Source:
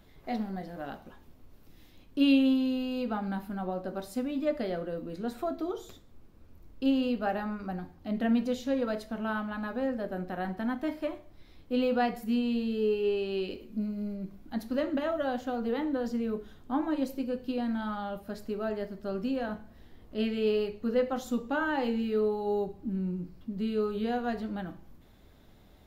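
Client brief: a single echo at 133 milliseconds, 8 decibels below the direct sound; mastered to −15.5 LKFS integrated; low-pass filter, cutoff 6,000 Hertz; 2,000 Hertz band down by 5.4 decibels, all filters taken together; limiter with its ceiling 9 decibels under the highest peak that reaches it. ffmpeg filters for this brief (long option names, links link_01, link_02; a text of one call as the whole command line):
ffmpeg -i in.wav -af "lowpass=6000,equalizer=frequency=2000:width_type=o:gain=-8,alimiter=limit=-24dB:level=0:latency=1,aecho=1:1:133:0.398,volume=18dB" out.wav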